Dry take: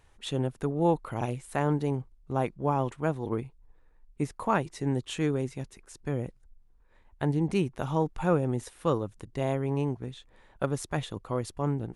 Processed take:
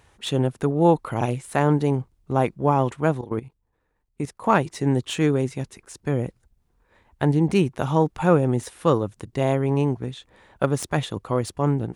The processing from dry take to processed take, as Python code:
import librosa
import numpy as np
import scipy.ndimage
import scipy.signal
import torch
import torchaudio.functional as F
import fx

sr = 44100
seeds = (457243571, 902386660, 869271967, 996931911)

y = fx.tracing_dist(x, sr, depth_ms=0.021)
y = scipy.signal.sosfilt(scipy.signal.butter(2, 61.0, 'highpass', fs=sr, output='sos'), y)
y = fx.level_steps(y, sr, step_db=16, at=(3.21, 4.44))
y = F.gain(torch.from_numpy(y), 7.5).numpy()